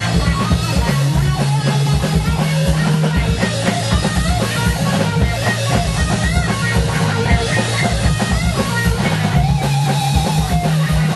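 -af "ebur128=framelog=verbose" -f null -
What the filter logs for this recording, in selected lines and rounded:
Integrated loudness:
  I:         -16.1 LUFS
  Threshold: -26.1 LUFS
Loudness range:
  LRA:         0.6 LU
  Threshold: -36.2 LUFS
  LRA low:   -16.5 LUFS
  LRA high:  -15.9 LUFS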